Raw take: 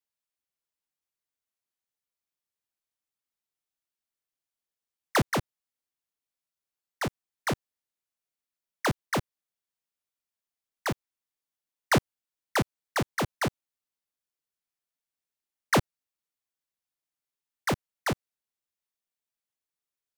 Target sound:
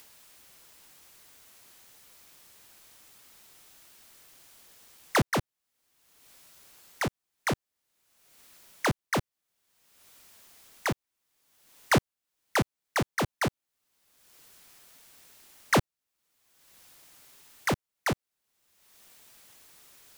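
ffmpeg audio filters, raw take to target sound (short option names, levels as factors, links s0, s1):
-af "acompressor=mode=upward:threshold=0.0398:ratio=2.5"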